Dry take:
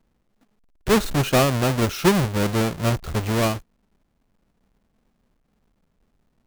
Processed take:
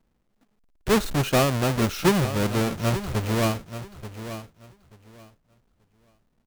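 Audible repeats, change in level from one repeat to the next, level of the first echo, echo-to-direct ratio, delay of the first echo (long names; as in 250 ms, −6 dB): 2, −14.0 dB, −12.0 dB, −12.0 dB, 883 ms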